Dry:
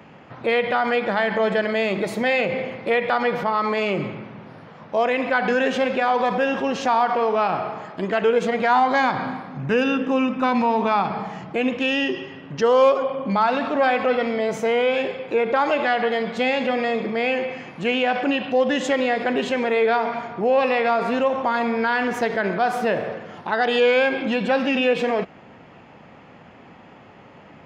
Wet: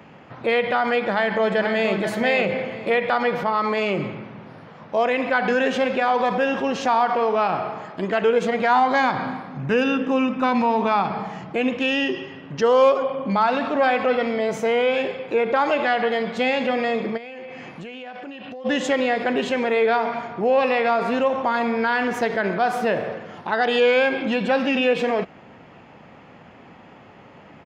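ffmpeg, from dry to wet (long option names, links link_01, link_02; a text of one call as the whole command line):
ffmpeg -i in.wav -filter_complex "[0:a]asplit=2[link_01][link_02];[link_02]afade=type=in:start_time=1.11:duration=0.01,afade=type=out:start_time=2.03:duration=0.01,aecho=0:1:480|960|1440|1920:0.446684|0.134005|0.0402015|0.0120605[link_03];[link_01][link_03]amix=inputs=2:normalize=0,asplit=3[link_04][link_05][link_06];[link_04]afade=type=out:start_time=17.16:duration=0.02[link_07];[link_05]acompressor=threshold=-32dB:ratio=20:attack=3.2:release=140:knee=1:detection=peak,afade=type=in:start_time=17.16:duration=0.02,afade=type=out:start_time=18.64:duration=0.02[link_08];[link_06]afade=type=in:start_time=18.64:duration=0.02[link_09];[link_07][link_08][link_09]amix=inputs=3:normalize=0" out.wav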